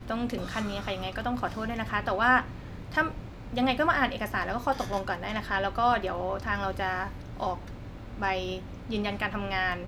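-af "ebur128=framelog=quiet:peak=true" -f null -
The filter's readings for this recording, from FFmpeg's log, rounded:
Integrated loudness:
  I:         -29.4 LUFS
  Threshold: -39.7 LUFS
Loudness range:
  LRA:         4.7 LU
  Threshold: -49.3 LUFS
  LRA low:   -32.4 LUFS
  LRA high:  -27.7 LUFS
True peak:
  Peak:       -9.7 dBFS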